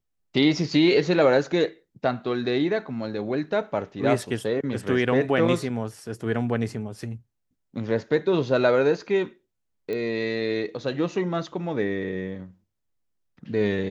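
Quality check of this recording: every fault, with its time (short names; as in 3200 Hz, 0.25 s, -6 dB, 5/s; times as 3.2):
9.93 pop -20 dBFS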